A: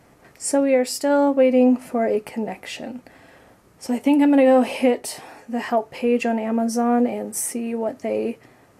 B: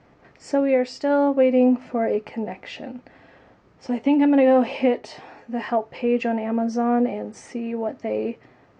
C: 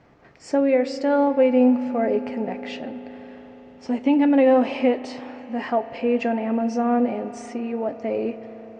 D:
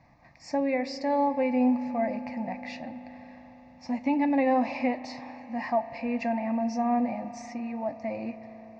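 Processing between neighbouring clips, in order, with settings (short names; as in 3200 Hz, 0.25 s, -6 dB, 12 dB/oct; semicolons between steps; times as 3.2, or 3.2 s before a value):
Bessel low-pass 3700 Hz, order 8; gain -1.5 dB
reverb RT60 5.3 s, pre-delay 36 ms, DRR 12 dB
fixed phaser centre 2100 Hz, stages 8; gain -1.5 dB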